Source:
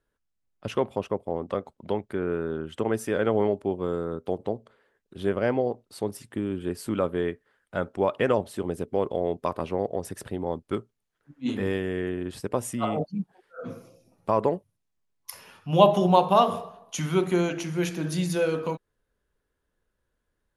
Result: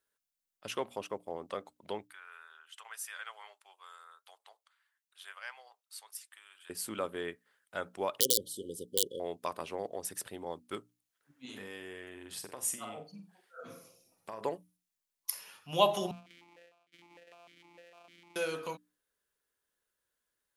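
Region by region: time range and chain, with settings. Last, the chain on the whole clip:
2.07–6.7 HPF 1000 Hz 24 dB/oct + flange 1.7 Hz, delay 2.4 ms, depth 2.2 ms, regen -77%
8.2–9.2 wrapped overs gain 13 dB + brick-wall FIR band-stop 560–2900 Hz
11.45–14.41 compressor, threshold -30 dBFS + flutter echo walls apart 7.8 m, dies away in 0.28 s
16.11–18.36 sample sorter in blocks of 256 samples + compressor 12:1, threshold -32 dBFS + vowel sequencer 6.6 Hz
whole clip: tilt +3.5 dB/oct; notches 60/120/180/240/300 Hz; gain -7 dB

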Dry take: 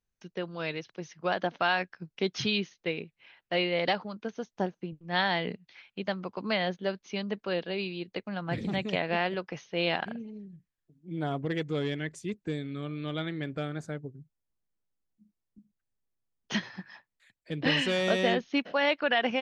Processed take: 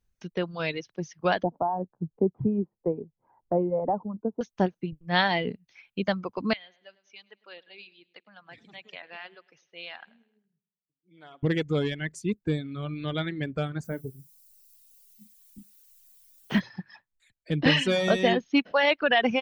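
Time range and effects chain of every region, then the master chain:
1.43–4.41 Chebyshev low-pass 940 Hz, order 4 + three-band squash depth 40%
6.53–11.43 Bessel low-pass 2200 Hz + differentiator + feedback echo 0.103 s, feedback 40%, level -13 dB
13.83–16.59 Bessel low-pass 2200 Hz + added noise violet -59 dBFS + doubler 30 ms -11 dB
whole clip: reverb removal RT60 1.8 s; low shelf 160 Hz +9 dB; gain +4.5 dB

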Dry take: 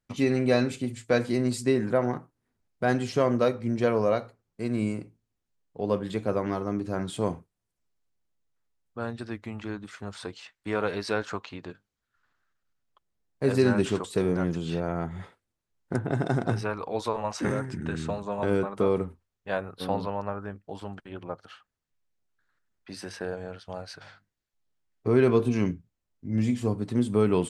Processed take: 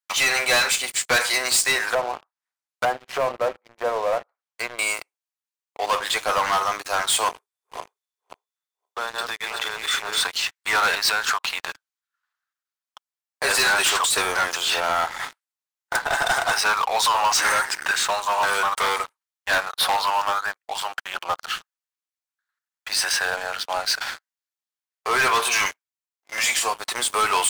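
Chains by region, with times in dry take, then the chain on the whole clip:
1.93–4.79 HPF 150 Hz + treble ducked by the level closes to 520 Hz, closed at -24 dBFS
7.28–10.21 regenerating reverse delay 0.263 s, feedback 44%, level -3.5 dB + compressor 5:1, threshold -36 dBFS + small resonant body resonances 410/3500 Hz, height 16 dB, ringing for 55 ms
10.95–11.5 compressor 2.5:1, threshold -34 dBFS + three-band expander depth 40%
17.91–21.08 low shelf 350 Hz -11 dB + notch 2600 Hz, Q 29 + hard clip -25.5 dBFS
25.34–26.59 HPF 600 Hz 6 dB/oct + sample leveller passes 1
whole clip: HPF 830 Hz 24 dB/oct; high shelf 4000 Hz +5.5 dB; sample leveller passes 5; gain +2.5 dB

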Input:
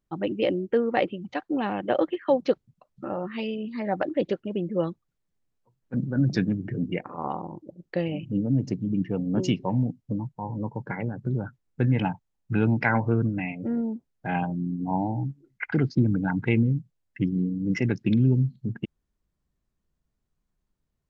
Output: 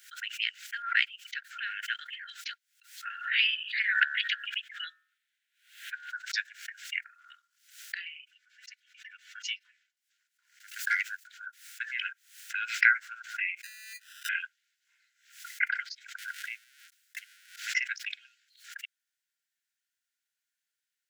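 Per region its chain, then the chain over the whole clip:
0.82–1.67 bell 720 Hz -12.5 dB 0.23 oct + three-band expander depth 100%
3.05–6.1 band shelf 2300 Hz +10.5 dB + de-hum 71.94 Hz, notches 26
7.99–9.97 tilt -3 dB/oct + comb 4 ms, depth 56%
10.6–11.27 tilt +4 dB/oct + sample leveller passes 1
13.63–14.29 HPF 340 Hz 6 dB/oct + negative-ratio compressor -38 dBFS + sample-rate reducer 2200 Hz
16.18–17.56 zero-crossing step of -35.5 dBFS + compressor 2.5:1, threshold -36 dBFS + gate with hold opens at -31 dBFS, closes at -33 dBFS
whole clip: Chebyshev high-pass 1400 Hz, order 10; backwards sustainer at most 110 dB/s; gain +5 dB

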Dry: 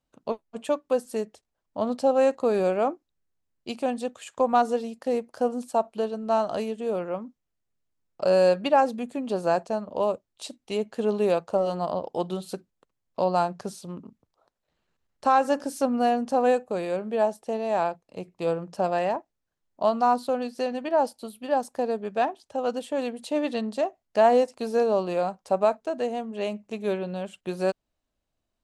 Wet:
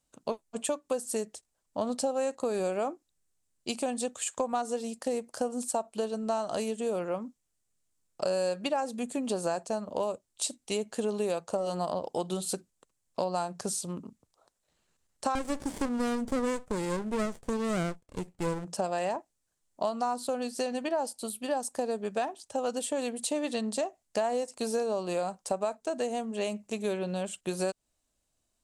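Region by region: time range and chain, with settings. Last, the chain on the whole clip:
15.35–18.65 high shelf 8200 Hz +4.5 dB + running maximum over 33 samples
whole clip: bell 8300 Hz +15 dB 1.2 oct; compressor 6:1, threshold -27 dBFS

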